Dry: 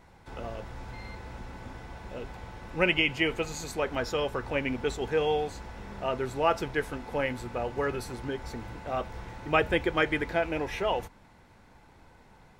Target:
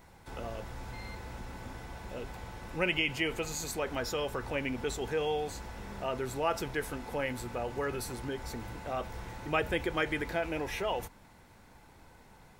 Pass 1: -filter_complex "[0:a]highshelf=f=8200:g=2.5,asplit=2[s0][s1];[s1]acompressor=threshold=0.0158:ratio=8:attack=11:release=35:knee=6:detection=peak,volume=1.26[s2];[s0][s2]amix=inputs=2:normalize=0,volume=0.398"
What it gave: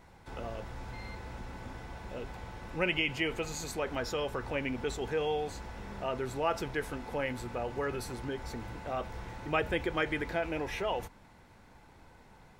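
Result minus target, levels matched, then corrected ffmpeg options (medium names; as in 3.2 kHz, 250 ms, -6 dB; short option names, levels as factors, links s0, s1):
8 kHz band -3.5 dB
-filter_complex "[0:a]highshelf=f=8200:g=12.5,asplit=2[s0][s1];[s1]acompressor=threshold=0.0158:ratio=8:attack=11:release=35:knee=6:detection=peak,volume=1.26[s2];[s0][s2]amix=inputs=2:normalize=0,volume=0.398"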